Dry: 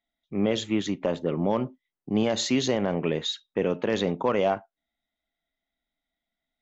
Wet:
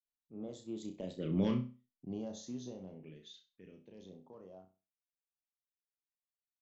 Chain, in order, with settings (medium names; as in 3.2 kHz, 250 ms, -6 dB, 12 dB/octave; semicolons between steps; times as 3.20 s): Doppler pass-by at 1.43 s, 16 m/s, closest 1.8 m; phase shifter stages 2, 0.51 Hz, lowest notch 750–2200 Hz; on a send: flutter echo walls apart 5.5 m, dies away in 0.32 s; on the sum: trim -1.5 dB